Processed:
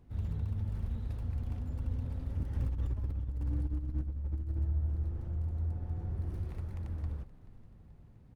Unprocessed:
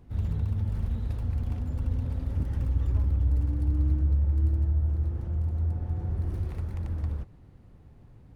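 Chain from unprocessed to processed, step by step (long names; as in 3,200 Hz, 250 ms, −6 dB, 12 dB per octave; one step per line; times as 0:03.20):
0:02.55–0:04.59: compressor whose output falls as the input rises −26 dBFS, ratio −0.5
echo with shifted repeats 432 ms, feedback 52%, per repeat −61 Hz, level −16.5 dB
level −6.5 dB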